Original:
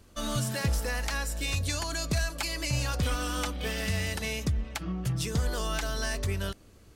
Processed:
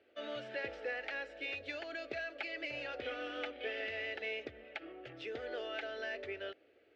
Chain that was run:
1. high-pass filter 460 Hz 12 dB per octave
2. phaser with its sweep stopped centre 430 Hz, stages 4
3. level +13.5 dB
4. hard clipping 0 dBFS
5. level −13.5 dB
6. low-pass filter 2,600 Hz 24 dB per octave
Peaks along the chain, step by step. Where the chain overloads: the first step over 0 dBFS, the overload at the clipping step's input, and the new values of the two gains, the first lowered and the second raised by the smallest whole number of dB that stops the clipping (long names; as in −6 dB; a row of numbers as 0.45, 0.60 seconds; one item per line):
−15.0, −15.5, −2.0, −2.0, −15.5, −25.5 dBFS
no step passes full scale